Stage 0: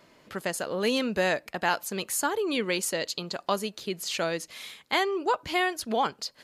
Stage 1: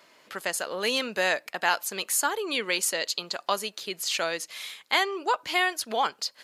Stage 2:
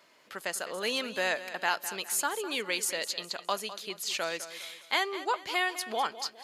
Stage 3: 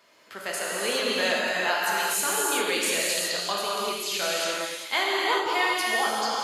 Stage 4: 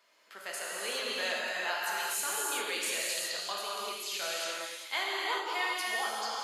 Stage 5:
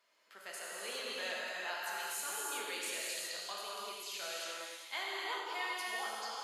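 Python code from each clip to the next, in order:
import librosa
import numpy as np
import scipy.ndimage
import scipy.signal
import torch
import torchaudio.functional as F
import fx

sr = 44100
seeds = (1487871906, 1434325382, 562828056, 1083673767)

y1 = fx.highpass(x, sr, hz=900.0, slope=6)
y1 = F.gain(torch.from_numpy(y1), 4.0).numpy()
y2 = fx.echo_feedback(y1, sr, ms=205, feedback_pct=40, wet_db=-13.5)
y2 = F.gain(torch.from_numpy(y2), -4.5).numpy()
y3 = fx.rev_gated(y2, sr, seeds[0], gate_ms=430, shape='flat', drr_db=-5.5)
y4 = fx.highpass(y3, sr, hz=610.0, slope=6)
y4 = F.gain(torch.from_numpy(y4), -7.0).numpy()
y5 = fx.echo_feedback(y4, sr, ms=99, feedback_pct=59, wet_db=-11.5)
y5 = F.gain(torch.from_numpy(y5), -7.0).numpy()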